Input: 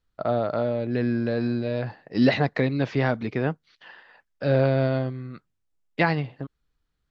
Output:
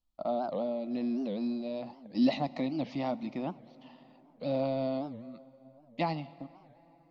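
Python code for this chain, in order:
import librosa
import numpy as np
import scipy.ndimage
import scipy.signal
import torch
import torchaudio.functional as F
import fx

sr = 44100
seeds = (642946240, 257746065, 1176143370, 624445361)

y = fx.fixed_phaser(x, sr, hz=430.0, stages=6)
y = fx.rev_plate(y, sr, seeds[0], rt60_s=4.5, hf_ratio=0.55, predelay_ms=0, drr_db=17.5)
y = fx.record_warp(y, sr, rpm=78.0, depth_cents=250.0)
y = y * 10.0 ** (-5.5 / 20.0)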